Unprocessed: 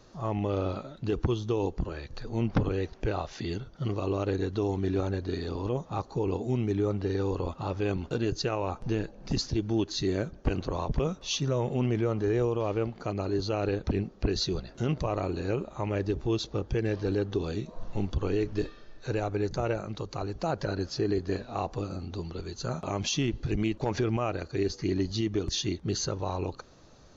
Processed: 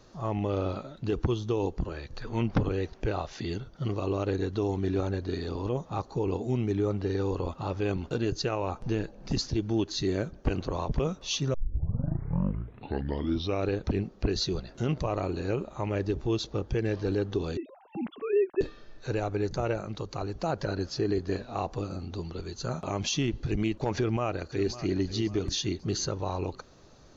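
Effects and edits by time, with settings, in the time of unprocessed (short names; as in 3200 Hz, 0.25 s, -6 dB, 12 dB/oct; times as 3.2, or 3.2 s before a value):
2.22–2.42 spectral gain 880–3600 Hz +8 dB
11.54 tape start 2.17 s
17.57–18.61 sine-wave speech
23.96–24.98 echo throw 0.55 s, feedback 40%, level -14 dB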